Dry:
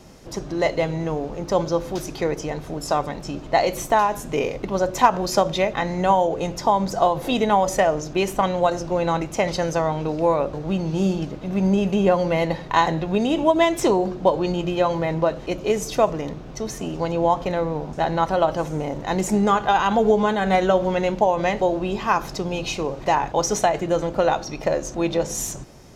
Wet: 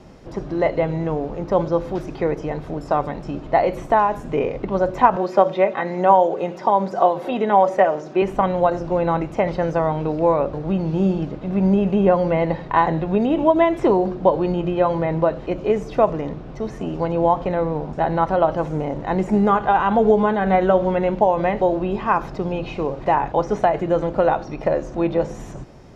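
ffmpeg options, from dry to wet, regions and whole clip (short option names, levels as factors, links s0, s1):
-filter_complex "[0:a]asettb=1/sr,asplit=3[s0][s1][s2];[s0]atrim=end=5.164[s3];[s1]atrim=start=5.16:end=8.22,asetpts=PTS-STARTPTS,afade=t=in:d=0.004:c=qsin,afade=t=out:st=3.056:d=0.004:c=qsin,highpass=280,aecho=1:1:5.3:0.48,atrim=end_sample=134946[s4];[s2]atrim=start=8.216[s5];[s3][s4]acrossfade=d=0.004:c1=hsin:c2=qsin[s6];[s6][s5]acrossfade=d=0.004:c1=qsin:c2=hsin,aemphasis=mode=reproduction:type=75fm,bandreject=f=6300:w=20,acrossover=split=2700[s7][s8];[s8]acompressor=threshold=0.00282:ratio=4:attack=1:release=60[s9];[s7][s9]amix=inputs=2:normalize=0,volume=1.19"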